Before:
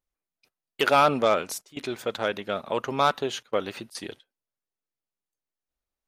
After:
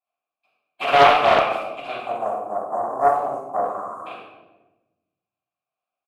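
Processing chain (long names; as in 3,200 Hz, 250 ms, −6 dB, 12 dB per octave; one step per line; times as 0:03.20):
compressing power law on the bin magnitudes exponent 0.42
0:01.97–0:04.06: Chebyshev band-stop filter 1,000–7,200 Hz, order 3
0:03.64–0:03.98: healed spectral selection 920–9,900 Hz before
formant filter a
parametric band 5,900 Hz −10 dB 0.5 octaves
far-end echo of a speakerphone 90 ms, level −16 dB
rectangular room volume 510 cubic metres, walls mixed, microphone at 8.5 metres
highs frequency-modulated by the lows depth 0.32 ms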